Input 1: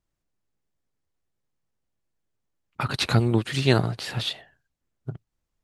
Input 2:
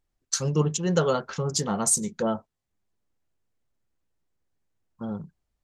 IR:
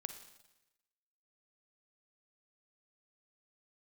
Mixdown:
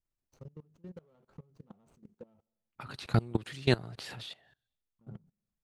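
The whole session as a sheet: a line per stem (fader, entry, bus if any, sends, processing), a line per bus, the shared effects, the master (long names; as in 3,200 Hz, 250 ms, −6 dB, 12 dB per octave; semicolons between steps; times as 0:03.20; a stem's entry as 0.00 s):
−4.0 dB, 0.00 s, send −20.5 dB, no processing
−17.5 dB, 0.00 s, send −9.5 dB, running median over 25 samples; spectral tilt −2 dB per octave; downward compressor 10 to 1, threshold −27 dBFS, peak gain reduction 15 dB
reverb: on, RT60 1.0 s, pre-delay 39 ms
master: output level in coarse steps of 22 dB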